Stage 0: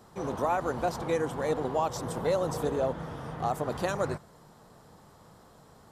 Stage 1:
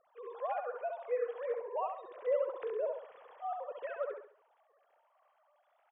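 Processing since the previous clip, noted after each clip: formants replaced by sine waves; feedback delay 68 ms, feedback 36%, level -5 dB; trim -8.5 dB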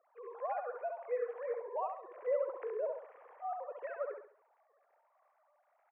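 elliptic band-pass 290–2200 Hz, stop band 40 dB; trim -1 dB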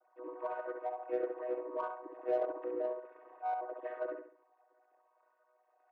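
vocoder on a held chord major triad, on B3; in parallel at -8.5 dB: saturation -38 dBFS, distortion -8 dB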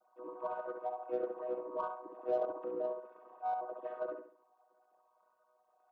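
FFT filter 140 Hz 0 dB, 200 Hz +10 dB, 290 Hz -7 dB, 1.3 kHz -3 dB, 1.9 kHz -17 dB, 3.3 kHz -4 dB; trim +4.5 dB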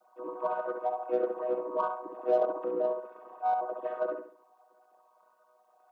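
Chebyshev high-pass 160 Hz, order 3; trim +8 dB

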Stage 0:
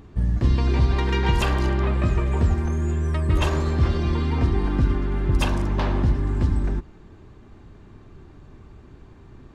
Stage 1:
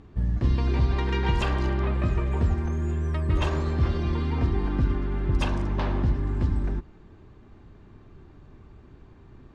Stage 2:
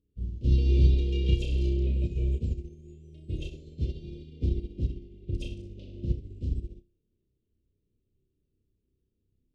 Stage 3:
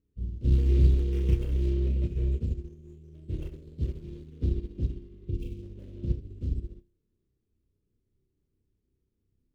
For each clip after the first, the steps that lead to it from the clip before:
distance through air 62 m; trim -3.5 dB
elliptic band-stop 510–2800 Hz, stop band 40 dB; on a send: flutter echo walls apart 5.4 m, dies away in 0.44 s; on the sum: upward expansion 2.5:1, over -34 dBFS
median filter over 25 samples; spectral replace 5.14–5.60 s, 520–2200 Hz before

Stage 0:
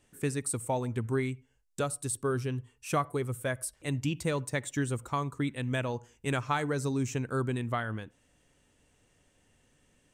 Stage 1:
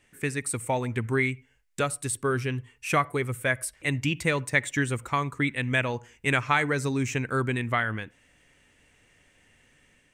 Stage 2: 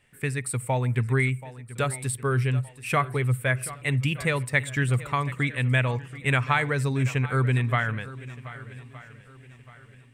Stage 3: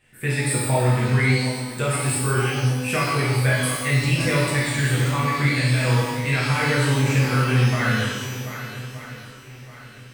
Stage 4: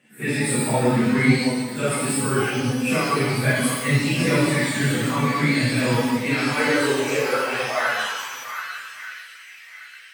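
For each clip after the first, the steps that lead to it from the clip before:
peaking EQ 2.1 kHz +11.5 dB 0.97 oct; level rider gain up to 3 dB
graphic EQ with 31 bands 125 Hz +9 dB, 315 Hz -7 dB, 6.3 kHz -10 dB; shuffle delay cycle 1218 ms, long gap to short 1.5:1, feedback 32%, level -16.5 dB
peak limiter -19 dBFS, peak gain reduction 11 dB; pitch-shifted reverb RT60 1.1 s, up +12 st, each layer -8 dB, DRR -7 dB
phase randomisation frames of 100 ms; high-pass sweep 210 Hz -> 1.9 kHz, 6.10–9.29 s

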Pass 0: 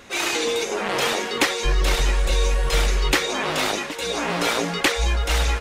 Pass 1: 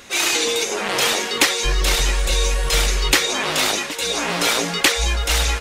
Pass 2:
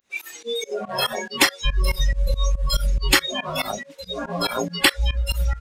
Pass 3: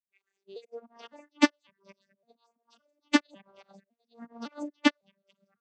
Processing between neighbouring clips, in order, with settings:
treble shelf 2.7 kHz +9 dB
spectral noise reduction 26 dB; volume shaper 141 bpm, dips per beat 2, -22 dB, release 113 ms; trim +1 dB
vocoder on a broken chord minor triad, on G3, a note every 556 ms; upward expansion 2.5:1, over -35 dBFS; trim -2.5 dB

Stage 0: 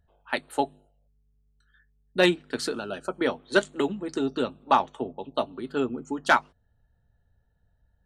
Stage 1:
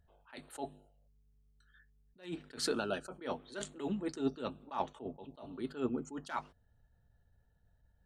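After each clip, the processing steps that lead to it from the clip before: attacks held to a fixed rise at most 170 dB/s; trim -2 dB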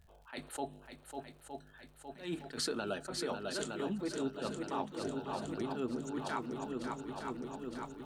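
shuffle delay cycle 913 ms, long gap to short 1.5:1, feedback 58%, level -8 dB; compression 4:1, threshold -40 dBFS, peak gain reduction 11 dB; crackle 85 per s -60 dBFS; trim +5.5 dB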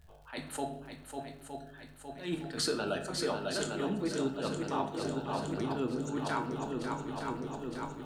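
simulated room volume 140 m³, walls mixed, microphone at 0.48 m; trim +3 dB

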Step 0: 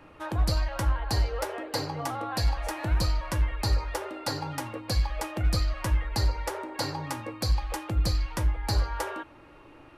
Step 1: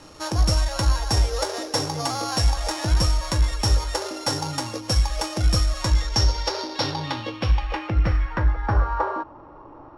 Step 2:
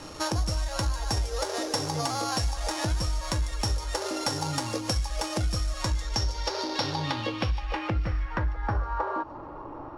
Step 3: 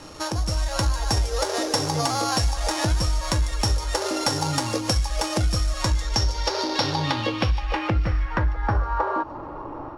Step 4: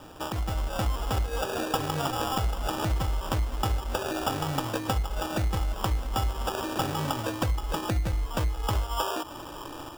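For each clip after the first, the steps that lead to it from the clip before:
sorted samples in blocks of 8 samples; low-pass sweep 8.1 kHz -> 1 kHz, 5.73–9.30 s; trim +5.5 dB
compression 5:1, threshold -30 dBFS, peak gain reduction 14.5 dB; feedback echo behind a high-pass 148 ms, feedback 59%, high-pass 4.9 kHz, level -9.5 dB; trim +4 dB
level rider gain up to 5.5 dB
sample-and-hold 21×; trim -5 dB

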